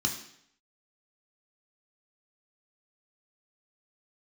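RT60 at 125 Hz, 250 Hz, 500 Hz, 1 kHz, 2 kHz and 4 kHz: 0.70, 0.70, 0.70, 0.70, 0.70, 0.65 s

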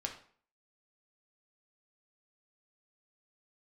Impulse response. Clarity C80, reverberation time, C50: 13.0 dB, 0.50 s, 9.0 dB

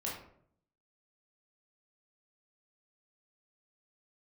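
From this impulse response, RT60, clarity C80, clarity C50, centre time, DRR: 0.65 s, 8.0 dB, 3.5 dB, 42 ms, -5.0 dB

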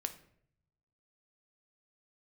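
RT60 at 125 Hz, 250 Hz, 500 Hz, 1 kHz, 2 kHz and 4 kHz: 1.3, 0.95, 0.70, 0.55, 0.55, 0.45 s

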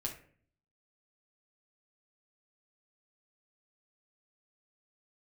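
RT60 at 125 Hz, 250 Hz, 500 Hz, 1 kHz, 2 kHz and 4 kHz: 0.80, 0.70, 0.55, 0.45, 0.50, 0.30 s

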